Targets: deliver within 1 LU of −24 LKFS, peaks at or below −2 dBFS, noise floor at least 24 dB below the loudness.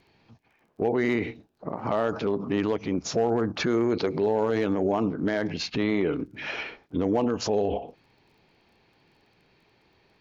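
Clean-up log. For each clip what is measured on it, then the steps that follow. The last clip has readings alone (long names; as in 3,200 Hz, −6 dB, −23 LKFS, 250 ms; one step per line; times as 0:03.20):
crackle rate 16 per second; integrated loudness −27.0 LKFS; sample peak −15.0 dBFS; target loudness −24.0 LKFS
→ click removal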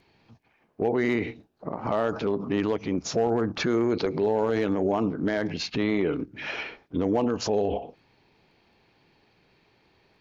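crackle rate 0.098 per second; integrated loudness −27.0 LKFS; sample peak −15.0 dBFS; target loudness −24.0 LKFS
→ level +3 dB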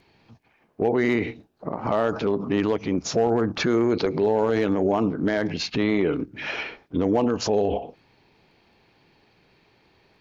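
integrated loudness −24.0 LKFS; sample peak −12.0 dBFS; background noise floor −63 dBFS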